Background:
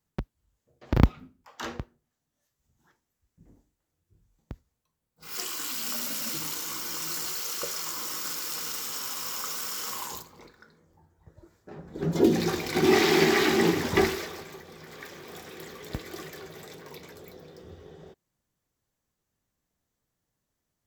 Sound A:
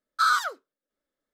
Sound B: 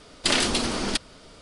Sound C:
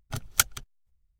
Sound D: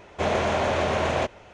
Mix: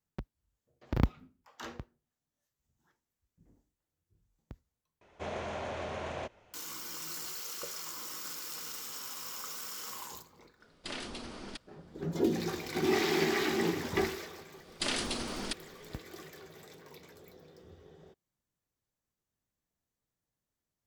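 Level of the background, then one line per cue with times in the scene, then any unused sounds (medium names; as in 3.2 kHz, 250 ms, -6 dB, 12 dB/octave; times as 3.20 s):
background -8 dB
5.01 s: replace with D -14.5 dB
10.60 s: add B -17 dB + treble shelf 6.1 kHz -9.5 dB
14.56 s: add B -11 dB
not used: A, C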